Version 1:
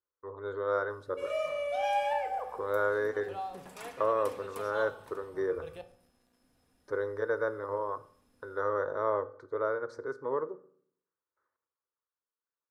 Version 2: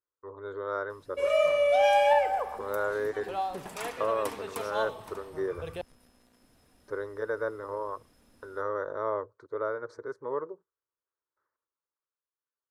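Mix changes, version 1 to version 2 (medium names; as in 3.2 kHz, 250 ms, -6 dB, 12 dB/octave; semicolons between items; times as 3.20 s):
background +10.0 dB; reverb: off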